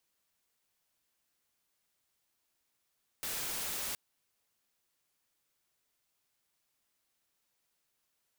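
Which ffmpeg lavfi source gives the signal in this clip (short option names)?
-f lavfi -i "anoisesrc=c=white:a=0.0231:d=0.72:r=44100:seed=1"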